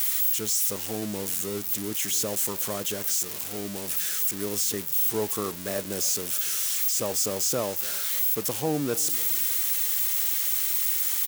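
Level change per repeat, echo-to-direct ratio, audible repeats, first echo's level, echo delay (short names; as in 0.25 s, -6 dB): -6.0 dB, -19.0 dB, 2, -20.0 dB, 0.295 s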